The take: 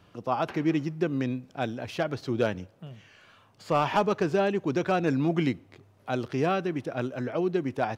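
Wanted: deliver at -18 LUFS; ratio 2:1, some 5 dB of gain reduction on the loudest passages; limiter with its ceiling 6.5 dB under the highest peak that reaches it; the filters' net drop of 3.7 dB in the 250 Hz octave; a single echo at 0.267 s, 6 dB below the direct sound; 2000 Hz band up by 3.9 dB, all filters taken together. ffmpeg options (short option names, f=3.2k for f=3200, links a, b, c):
-af "equalizer=f=250:t=o:g=-5.5,equalizer=f=2k:t=o:g=5.5,acompressor=threshold=-28dB:ratio=2,alimiter=limit=-22dB:level=0:latency=1,aecho=1:1:267:0.501,volume=16dB"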